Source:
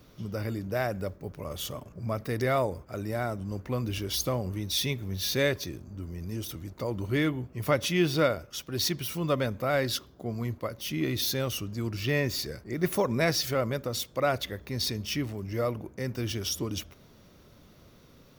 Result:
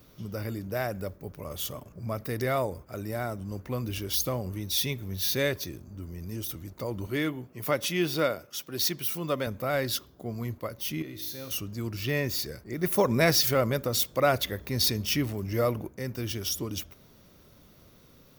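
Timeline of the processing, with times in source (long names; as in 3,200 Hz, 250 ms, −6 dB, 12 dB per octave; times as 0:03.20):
0:07.07–0:09.47: Bessel high-pass filter 170 Hz
0:11.02–0:11.51: tuned comb filter 53 Hz, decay 1.4 s, mix 80%
0:12.98–0:15.88: clip gain +4.5 dB
whole clip: high-shelf EQ 11,000 Hz +11 dB; level −1.5 dB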